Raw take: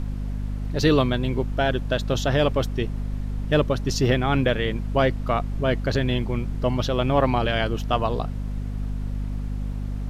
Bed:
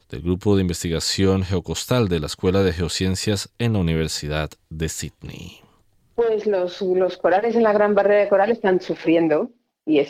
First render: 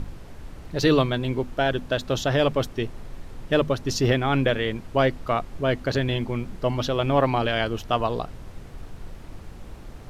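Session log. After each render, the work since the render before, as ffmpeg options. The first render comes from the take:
ffmpeg -i in.wav -af "bandreject=frequency=50:width_type=h:width=6,bandreject=frequency=100:width_type=h:width=6,bandreject=frequency=150:width_type=h:width=6,bandreject=frequency=200:width_type=h:width=6,bandreject=frequency=250:width_type=h:width=6" out.wav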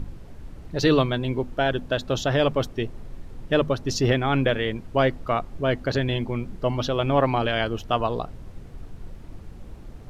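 ffmpeg -i in.wav -af "afftdn=noise_reduction=6:noise_floor=-43" out.wav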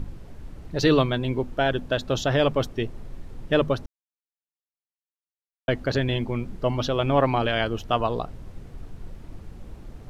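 ffmpeg -i in.wav -filter_complex "[0:a]asplit=3[link_01][link_02][link_03];[link_01]atrim=end=3.86,asetpts=PTS-STARTPTS,afade=type=out:start_time=3.856:duration=0.004:curve=hsin[link_04];[link_02]atrim=start=3.86:end=5.68,asetpts=PTS-STARTPTS,volume=0[link_05];[link_03]atrim=start=5.68,asetpts=PTS-STARTPTS,afade=type=in:duration=0.004:curve=hsin[link_06];[link_04][link_05][link_06]concat=n=3:v=0:a=1" out.wav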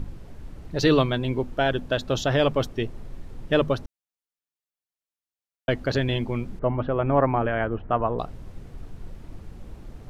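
ffmpeg -i in.wav -filter_complex "[0:a]asettb=1/sr,asplit=3[link_01][link_02][link_03];[link_01]atrim=end=6.594[link_04];[link_02]atrim=start=6.59:end=8.19,asetpts=PTS-STARTPTS,afade=type=in:duration=0.004:curve=qsin,afade=type=out:start_time=1.596:duration=0.004:curve=qsin,lowpass=frequency=1900:width=0.5412,lowpass=frequency=1900:width=1.3066[link_05];[link_03]atrim=start=8.186[link_06];[link_04][link_05]acrossfade=duration=0.004:curve1=hsin:curve2=qsin[link_07];[link_07][link_06]acrossfade=duration=0.004:curve1=qsin:curve2=hsin" out.wav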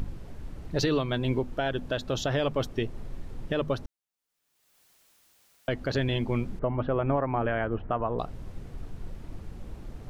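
ffmpeg -i in.wav -af "acompressor=mode=upward:threshold=-39dB:ratio=2.5,alimiter=limit=-16.5dB:level=0:latency=1:release=203" out.wav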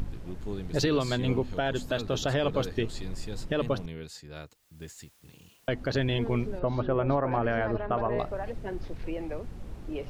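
ffmpeg -i in.wav -i bed.wav -filter_complex "[1:a]volume=-19dB[link_01];[0:a][link_01]amix=inputs=2:normalize=0" out.wav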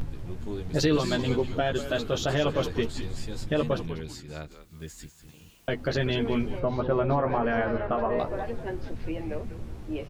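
ffmpeg -i in.wav -filter_complex "[0:a]asplit=2[link_01][link_02];[link_02]adelay=13,volume=-4dB[link_03];[link_01][link_03]amix=inputs=2:normalize=0,asplit=5[link_04][link_05][link_06][link_07][link_08];[link_05]adelay=193,afreqshift=-120,volume=-11dB[link_09];[link_06]adelay=386,afreqshift=-240,volume=-19.9dB[link_10];[link_07]adelay=579,afreqshift=-360,volume=-28.7dB[link_11];[link_08]adelay=772,afreqshift=-480,volume=-37.6dB[link_12];[link_04][link_09][link_10][link_11][link_12]amix=inputs=5:normalize=0" out.wav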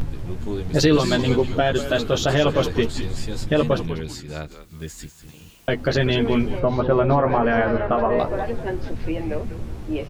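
ffmpeg -i in.wav -af "volume=7dB" out.wav

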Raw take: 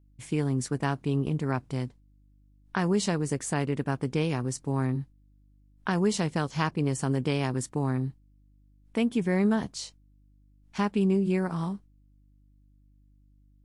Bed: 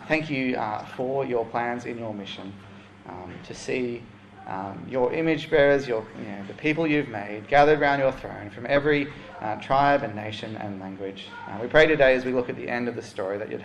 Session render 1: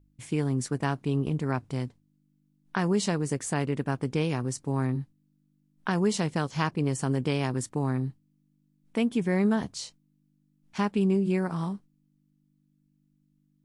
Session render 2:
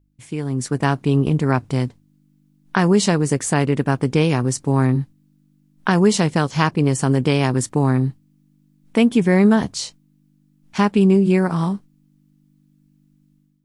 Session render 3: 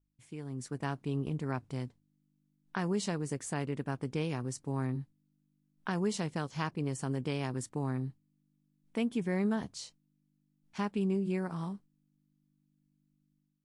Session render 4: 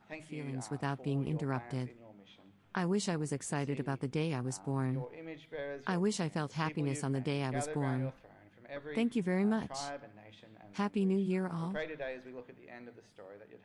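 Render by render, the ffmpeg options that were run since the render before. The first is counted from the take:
ffmpeg -i in.wav -af "bandreject=frequency=50:width_type=h:width=4,bandreject=frequency=100:width_type=h:width=4" out.wav
ffmpeg -i in.wav -af "dynaudnorm=framelen=430:gausssize=3:maxgain=11.5dB" out.wav
ffmpeg -i in.wav -af "volume=-17dB" out.wav
ffmpeg -i in.wav -i bed.wav -filter_complex "[1:a]volume=-22.5dB[link_01];[0:a][link_01]amix=inputs=2:normalize=0" out.wav

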